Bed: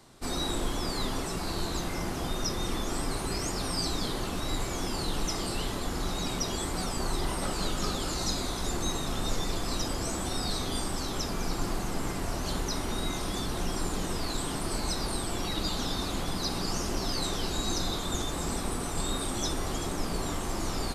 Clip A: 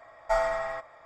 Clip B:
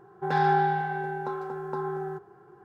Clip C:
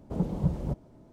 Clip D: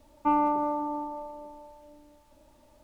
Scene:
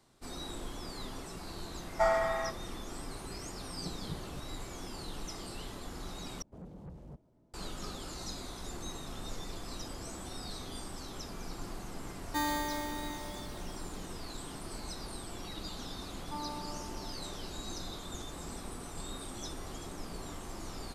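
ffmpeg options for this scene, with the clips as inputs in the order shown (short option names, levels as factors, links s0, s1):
-filter_complex "[3:a]asplit=2[s0][s1];[4:a]asplit=2[s2][s3];[0:a]volume=0.282[s4];[1:a]dynaudnorm=f=140:g=3:m=3.98[s5];[s1]asoftclip=type=tanh:threshold=0.0335[s6];[s2]acrusher=samples=16:mix=1:aa=0.000001[s7];[s4]asplit=2[s8][s9];[s8]atrim=end=6.424[s10];[s6]atrim=end=1.12,asetpts=PTS-STARTPTS,volume=0.211[s11];[s9]atrim=start=7.536[s12];[s5]atrim=end=1.05,asetpts=PTS-STARTPTS,volume=0.237,afade=t=in:d=0.004:c=hsin,afade=t=out:st=1.046:d=0.004:c=hsin,adelay=1700[s13];[s0]atrim=end=1.12,asetpts=PTS-STARTPTS,volume=0.158,afade=t=in:d=0.004:c=hsin,afade=t=out:st=1.116:d=0.004:c=hsin,adelay=3660[s14];[s7]atrim=end=2.83,asetpts=PTS-STARTPTS,volume=0.355,afade=t=in:d=0.004:c=hsin,afade=t=out:st=2.826:d=0.004:c=hsin,adelay=12090[s15];[s3]atrim=end=2.83,asetpts=PTS-STARTPTS,volume=0.133,afade=t=in:d=0.004:c=hsin,afade=t=out:st=2.826:d=0.004:c=hsin,adelay=16060[s16];[s10][s11]acrossfade=d=0.004:c1=hsin:c2=hsin[s17];[s17][s12]acrossfade=d=0.004:c1=hsin:c2=hsin[s18];[s18][s13][s14][s15][s16]amix=inputs=5:normalize=0"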